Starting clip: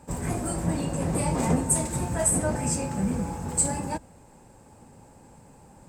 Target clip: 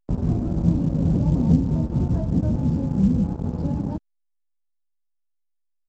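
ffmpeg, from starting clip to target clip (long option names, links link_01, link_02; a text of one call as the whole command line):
ffmpeg -i in.wav -filter_complex "[0:a]aresample=11025,acrusher=bits=4:mix=0:aa=0.5,aresample=44100,equalizer=frequency=250:width_type=o:width=1:gain=4,equalizer=frequency=2000:width_type=o:width=1:gain=-10,equalizer=frequency=4000:width_type=o:width=1:gain=-8,acrossover=split=230[link_01][link_02];[link_02]acompressor=threshold=-39dB:ratio=3[link_03];[link_01][link_03]amix=inputs=2:normalize=0,tiltshelf=frequency=910:gain=8.5" -ar 16000 -c:a pcm_alaw out.wav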